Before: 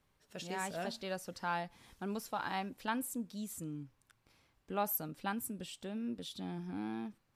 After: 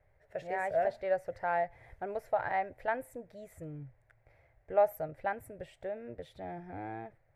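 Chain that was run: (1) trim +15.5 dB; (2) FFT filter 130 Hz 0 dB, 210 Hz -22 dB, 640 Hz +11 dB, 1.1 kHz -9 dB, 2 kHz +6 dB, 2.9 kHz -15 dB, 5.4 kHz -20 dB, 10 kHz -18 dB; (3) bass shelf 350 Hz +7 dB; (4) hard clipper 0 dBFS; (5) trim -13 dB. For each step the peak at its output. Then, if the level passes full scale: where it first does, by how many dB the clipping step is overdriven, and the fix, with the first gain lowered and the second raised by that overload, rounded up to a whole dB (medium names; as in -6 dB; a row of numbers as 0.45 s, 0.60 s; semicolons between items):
-7.0 dBFS, -4.5 dBFS, -3.0 dBFS, -3.0 dBFS, -16.0 dBFS; nothing clips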